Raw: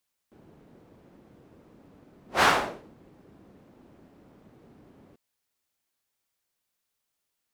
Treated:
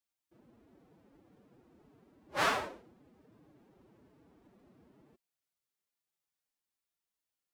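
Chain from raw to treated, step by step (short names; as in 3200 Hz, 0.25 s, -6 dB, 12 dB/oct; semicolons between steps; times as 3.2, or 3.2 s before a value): formant-preserving pitch shift +7.5 st; gain -8 dB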